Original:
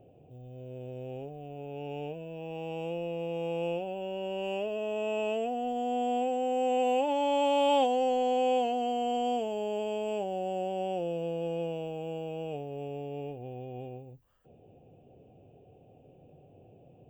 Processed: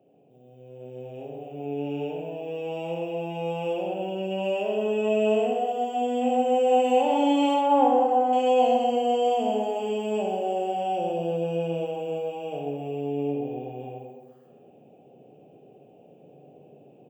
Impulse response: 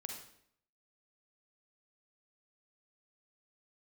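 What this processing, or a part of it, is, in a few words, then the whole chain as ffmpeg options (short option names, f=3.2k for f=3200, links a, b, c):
far laptop microphone: -filter_complex "[0:a]asettb=1/sr,asplit=3[a][b][c];[a]atrim=end=7.544[d];[b]atrim=start=7.54:end=8.33,asetpts=PTS-STARTPTS,afade=t=in:d=0.004:c=qsin,afade=t=out:st=0.786:d=0.004:c=qsin,highshelf=f=2.1k:t=q:w=1.5:g=-13[e];[c]atrim=start=8.326[f];[d][e]acrossfade=d=0.004:c1=hsin:c2=qsin[g];[g][f]acrossfade=d=0.004:c1=qsin:c2=hsin,asplit=2[h][i];[i]adelay=126,lowpass=f=2k:p=1,volume=-5dB,asplit=2[j][k];[k]adelay=126,lowpass=f=2k:p=1,volume=0.49,asplit=2[l][m];[m]adelay=126,lowpass=f=2k:p=1,volume=0.49,asplit=2[n][o];[o]adelay=126,lowpass=f=2k:p=1,volume=0.49,asplit=2[p][q];[q]adelay=126,lowpass=f=2k:p=1,volume=0.49,asplit=2[r][s];[s]adelay=126,lowpass=f=2k:p=1,volume=0.49[t];[h][j][l][n][p][r][t]amix=inputs=7:normalize=0[u];[1:a]atrim=start_sample=2205[v];[u][v]afir=irnorm=-1:irlink=0,highpass=f=160:w=0.5412,highpass=f=160:w=1.3066,dynaudnorm=f=760:g=3:m=7dB"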